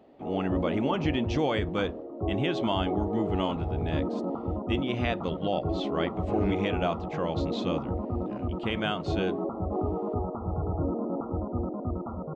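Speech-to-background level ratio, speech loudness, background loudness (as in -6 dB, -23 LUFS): 1.0 dB, -31.5 LUFS, -32.5 LUFS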